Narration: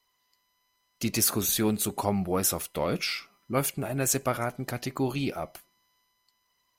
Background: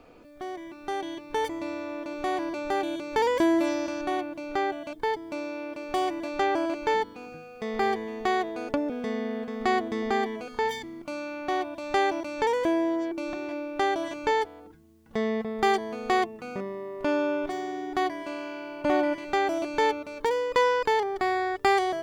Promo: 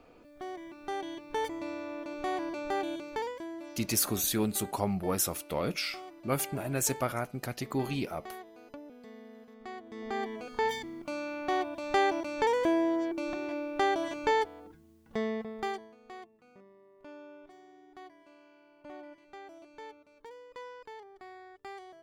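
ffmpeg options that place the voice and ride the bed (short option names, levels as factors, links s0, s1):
-filter_complex "[0:a]adelay=2750,volume=0.668[s0];[1:a]volume=4.22,afade=t=out:st=2.92:d=0.47:silence=0.188365,afade=t=in:st=9.83:d=0.84:silence=0.141254,afade=t=out:st=14.91:d=1.04:silence=0.0891251[s1];[s0][s1]amix=inputs=2:normalize=0"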